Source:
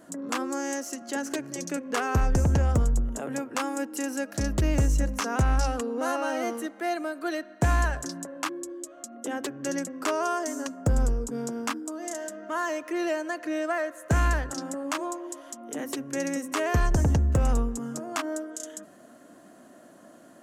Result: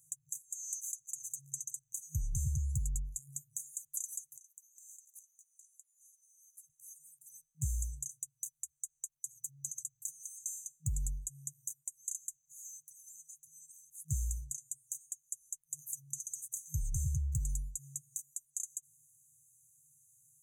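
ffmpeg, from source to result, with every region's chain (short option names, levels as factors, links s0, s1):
-filter_complex "[0:a]asettb=1/sr,asplit=3[s0][s1][s2];[s0]atrim=end=4.364[s3];[s1]atrim=start=4.36:end=6.7,asetpts=PTS-STARTPTS,afade=t=in:d=0.004:c=qsin,afade=t=out:st=2.336:d=0.004:c=qsin,highpass=f=1200:w=0.5412,highpass=f=1200:w=1.3066,acompressor=threshold=0.00398:ratio=16:attack=3.2:release=140:knee=1:detection=peak[s4];[s2]atrim=start=6.696[s5];[s3][s4]acrossfade=d=0.004:c1=hsin:c2=qsin[s6];[s6][s5]acrossfade=d=0.004:c1=qsin:c2=hsin,highshelf=f=9500:g=4.5,afftfilt=real='re*(1-between(b*sr/4096,160,6000))':imag='im*(1-between(b*sr/4096,160,6000))':win_size=4096:overlap=0.75,lowshelf=f=180:g=-11,volume=0.794"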